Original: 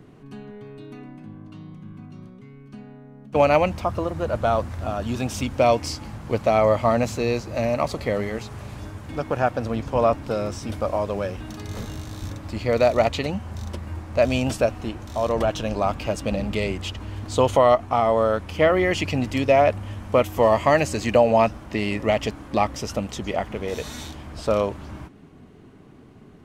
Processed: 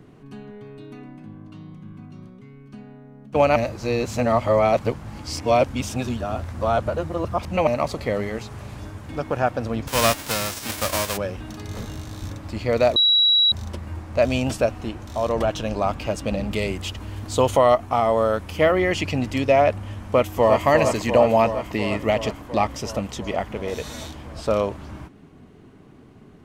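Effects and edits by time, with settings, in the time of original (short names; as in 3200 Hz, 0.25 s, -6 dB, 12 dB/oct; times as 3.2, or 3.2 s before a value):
3.56–7.67 reverse
9.87–11.16 spectral whitening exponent 0.3
12.96–13.52 bleep 3890 Hz -13.5 dBFS
16.51–18.72 high shelf 10000 Hz +11 dB
20.03–20.66 echo throw 0.35 s, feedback 75%, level -5.5 dB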